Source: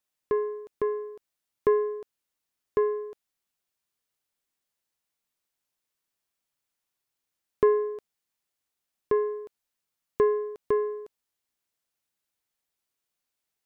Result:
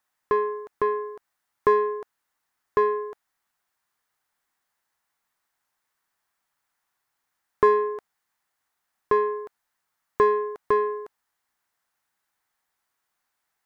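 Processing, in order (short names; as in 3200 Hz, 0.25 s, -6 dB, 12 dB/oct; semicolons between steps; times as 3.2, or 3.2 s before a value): band shelf 1200 Hz +9.5 dB; in parallel at -7 dB: soft clip -24.5 dBFS, distortion -6 dB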